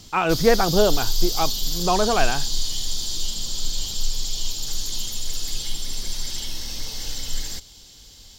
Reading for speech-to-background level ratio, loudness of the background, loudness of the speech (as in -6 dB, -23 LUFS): 4.5 dB, -27.0 LUFS, -22.5 LUFS